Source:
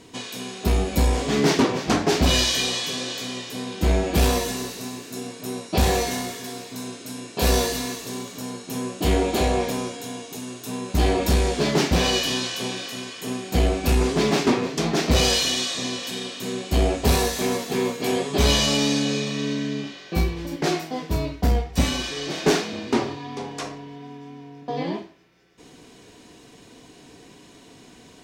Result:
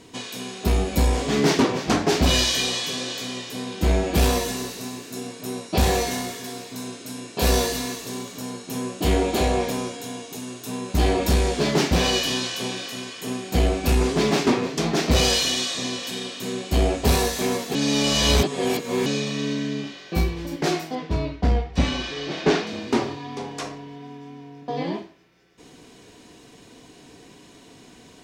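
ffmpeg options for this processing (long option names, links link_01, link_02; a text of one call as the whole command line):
ffmpeg -i in.wav -filter_complex "[0:a]asettb=1/sr,asplit=3[link_01][link_02][link_03];[link_01]atrim=end=20.954[link_04];[link_02]atrim=start=20.95:end=22.67,asetpts=PTS-STARTPTS,afade=type=in:duration=0.004:curve=qsin,afade=type=out:start_time=1.716:duration=0.004:curve=qsin,lowpass=4300[link_05];[link_03]atrim=start=22.666[link_06];[link_04][link_05]acrossfade=duration=0.004:curve1=hsin:curve2=qsin[link_07];[link_07][link_06]acrossfade=duration=0.004:curve1=qsin:curve2=hsin,asplit=3[link_08][link_09][link_10];[link_08]atrim=end=17.752[link_11];[link_09]atrim=start=17.748:end=19.062,asetpts=PTS-STARTPTS,areverse[link_12];[link_10]atrim=start=19.058[link_13];[link_11][link_12]acrossfade=duration=0.004:curve1=hsin:curve2=hsin[link_14];[link_14][link_13]acrossfade=duration=0.004:curve1=hsin:curve2=hsin" out.wav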